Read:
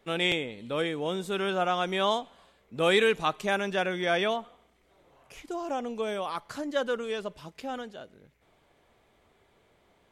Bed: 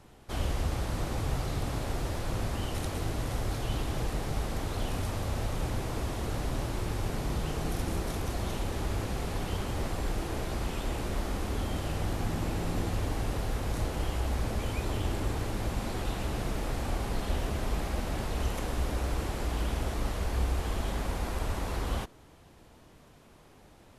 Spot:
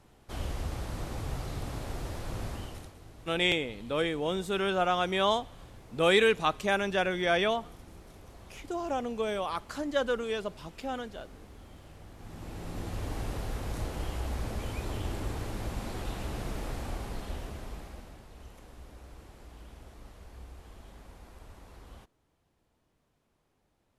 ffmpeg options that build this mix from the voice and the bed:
-filter_complex "[0:a]adelay=3200,volume=0dB[a];[1:a]volume=10.5dB,afade=t=out:st=2.49:d=0.45:silence=0.199526,afade=t=in:st=12.15:d=1.02:silence=0.177828,afade=t=out:st=16.66:d=1.55:silence=0.177828[b];[a][b]amix=inputs=2:normalize=0"

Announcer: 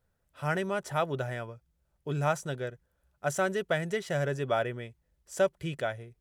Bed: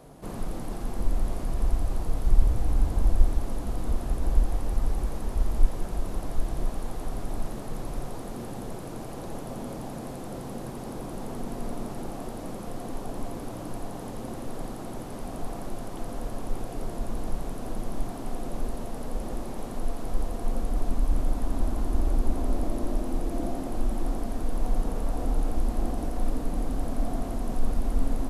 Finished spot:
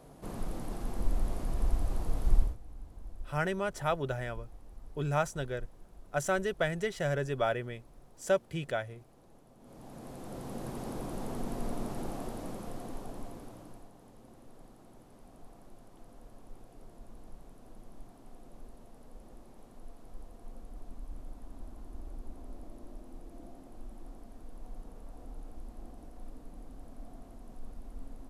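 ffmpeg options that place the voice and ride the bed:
-filter_complex "[0:a]adelay=2900,volume=-1.5dB[a];[1:a]volume=16.5dB,afade=t=out:st=2.35:d=0.22:silence=0.112202,afade=t=in:st=9.59:d=1.17:silence=0.0891251,afade=t=out:st=12.1:d=1.81:silence=0.141254[b];[a][b]amix=inputs=2:normalize=0"

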